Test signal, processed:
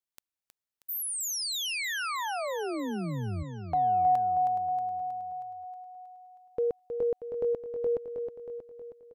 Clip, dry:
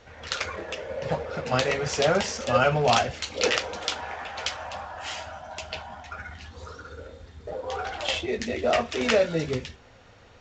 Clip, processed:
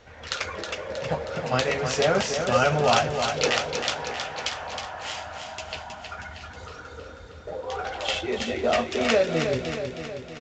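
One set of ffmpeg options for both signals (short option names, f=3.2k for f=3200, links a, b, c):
-af "aecho=1:1:317|634|951|1268|1585|1902|2219:0.447|0.259|0.15|0.0872|0.0505|0.0293|0.017"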